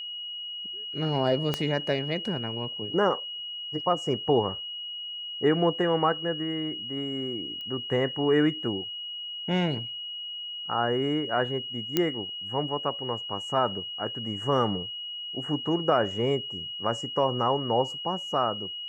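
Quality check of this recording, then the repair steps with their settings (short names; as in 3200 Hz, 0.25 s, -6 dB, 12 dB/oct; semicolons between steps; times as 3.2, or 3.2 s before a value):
tone 2900 Hz -34 dBFS
1.54 pop -12 dBFS
7.61 pop -28 dBFS
11.97 pop -9 dBFS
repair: de-click; notch 2900 Hz, Q 30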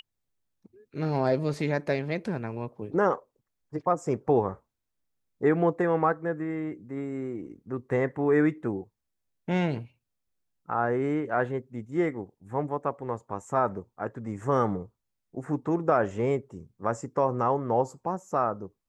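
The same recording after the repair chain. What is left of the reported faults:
1.54 pop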